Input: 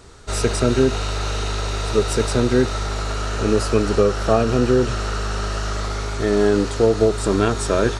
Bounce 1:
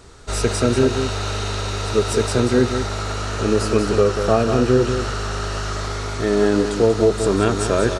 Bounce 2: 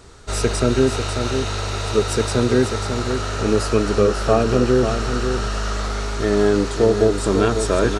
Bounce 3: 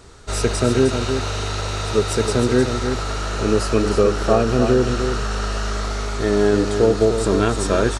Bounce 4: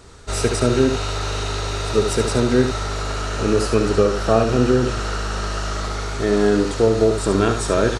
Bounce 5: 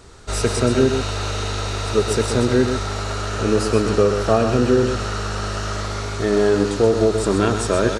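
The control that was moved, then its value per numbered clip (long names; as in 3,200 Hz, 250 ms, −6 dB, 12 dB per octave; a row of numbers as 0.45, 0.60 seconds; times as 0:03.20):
single-tap delay, delay time: 188, 544, 309, 72, 128 milliseconds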